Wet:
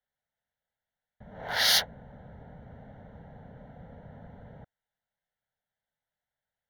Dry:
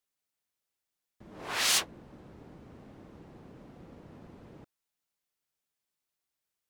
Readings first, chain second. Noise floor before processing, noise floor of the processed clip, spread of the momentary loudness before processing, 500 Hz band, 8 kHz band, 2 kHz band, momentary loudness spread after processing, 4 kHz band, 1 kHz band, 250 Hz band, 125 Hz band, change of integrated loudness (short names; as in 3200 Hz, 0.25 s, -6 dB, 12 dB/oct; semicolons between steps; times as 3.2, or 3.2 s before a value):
under -85 dBFS, under -85 dBFS, 19 LU, +4.0 dB, -2.5 dB, +4.0 dB, 15 LU, +5.0 dB, +2.5 dB, -0.5 dB, +5.0 dB, +4.0 dB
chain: Wiener smoothing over 9 samples; fixed phaser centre 1700 Hz, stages 8; gain +7 dB